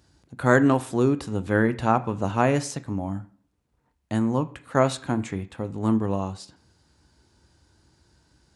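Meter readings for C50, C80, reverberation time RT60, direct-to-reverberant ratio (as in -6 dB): 17.0 dB, 20.5 dB, 0.55 s, 11.0 dB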